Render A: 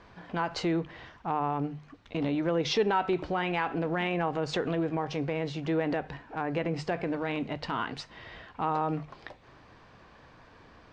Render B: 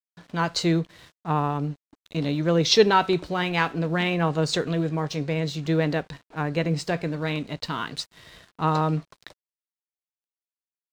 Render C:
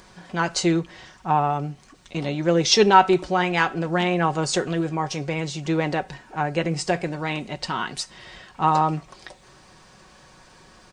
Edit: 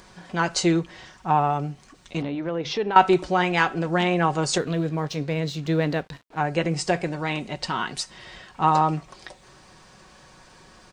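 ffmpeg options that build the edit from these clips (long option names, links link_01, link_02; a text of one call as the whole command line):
ffmpeg -i take0.wav -i take1.wav -i take2.wav -filter_complex "[2:a]asplit=3[link_01][link_02][link_03];[link_01]atrim=end=2.222[link_04];[0:a]atrim=start=2.218:end=2.962[link_05];[link_02]atrim=start=2.958:end=4.582[link_06];[1:a]atrim=start=4.578:end=6.372[link_07];[link_03]atrim=start=6.368[link_08];[link_04][link_05]acrossfade=duration=0.004:curve1=hsin:curve2=hsin[link_09];[link_09][link_06]acrossfade=duration=0.004:curve1=hsin:curve2=hsin[link_10];[link_10][link_07]acrossfade=duration=0.004:curve1=hsin:curve2=hsin[link_11];[link_11][link_08]acrossfade=duration=0.004:curve1=hsin:curve2=hsin" out.wav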